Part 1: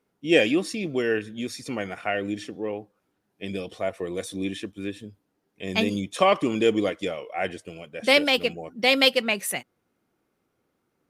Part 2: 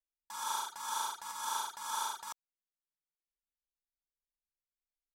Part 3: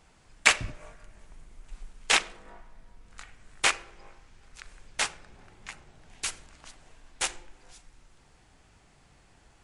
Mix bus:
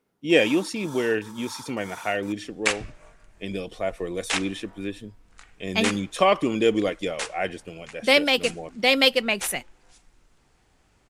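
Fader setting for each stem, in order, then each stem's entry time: +0.5, −6.0, −3.5 decibels; 0.00, 0.00, 2.20 seconds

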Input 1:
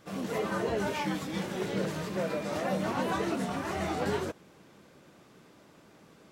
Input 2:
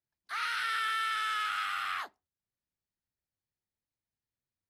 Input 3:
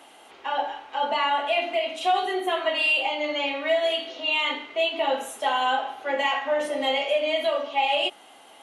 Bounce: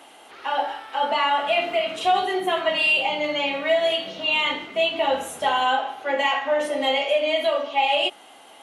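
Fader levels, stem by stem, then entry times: −13.5, −12.5, +2.5 decibels; 1.35, 0.00, 0.00 seconds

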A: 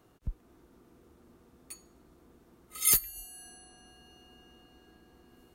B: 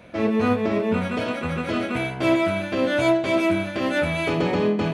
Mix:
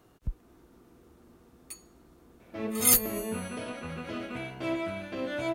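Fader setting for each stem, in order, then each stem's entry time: +2.5, −12.0 decibels; 0.00, 2.40 seconds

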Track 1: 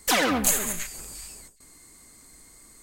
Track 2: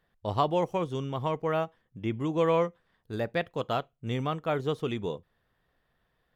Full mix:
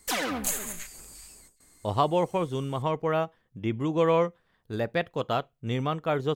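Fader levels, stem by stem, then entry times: −7.0, +2.0 decibels; 0.00, 1.60 seconds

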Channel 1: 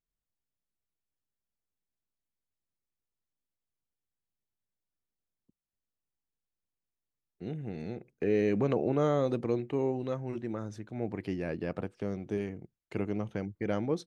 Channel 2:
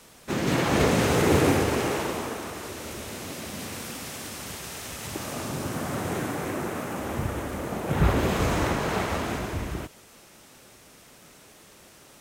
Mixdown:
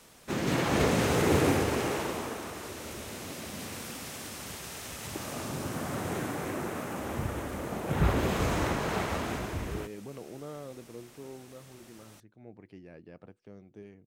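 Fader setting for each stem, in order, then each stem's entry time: −15.0, −4.0 decibels; 1.45, 0.00 seconds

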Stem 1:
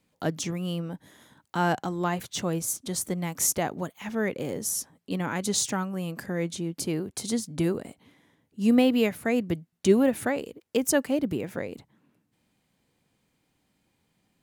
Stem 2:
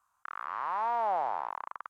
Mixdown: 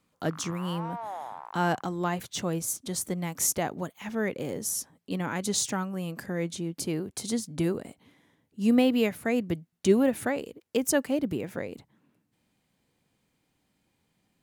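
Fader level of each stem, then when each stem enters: −1.5, −7.5 decibels; 0.00, 0.00 seconds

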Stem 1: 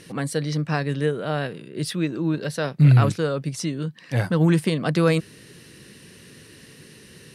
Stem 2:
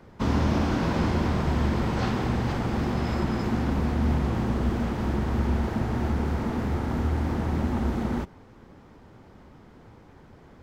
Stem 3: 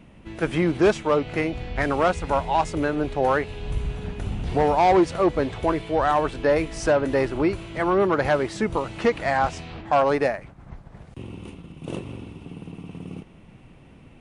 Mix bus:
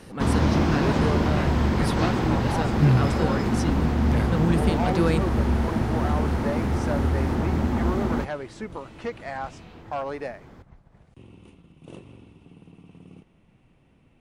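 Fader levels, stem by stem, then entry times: −5.5, +2.5, −11.0 decibels; 0.00, 0.00, 0.00 seconds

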